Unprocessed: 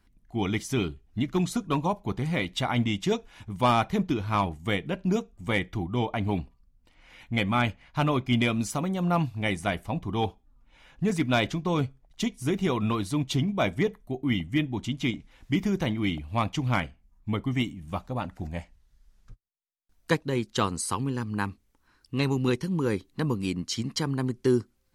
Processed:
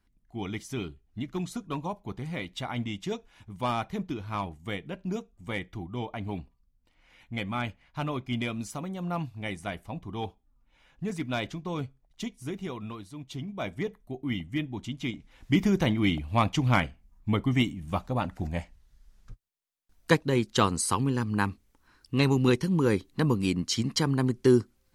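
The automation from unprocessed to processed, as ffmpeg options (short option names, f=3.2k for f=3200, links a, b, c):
-af "volume=11dB,afade=t=out:st=12.28:d=0.86:silence=0.375837,afade=t=in:st=13.14:d=0.9:silence=0.298538,afade=t=in:st=15.15:d=0.41:silence=0.421697"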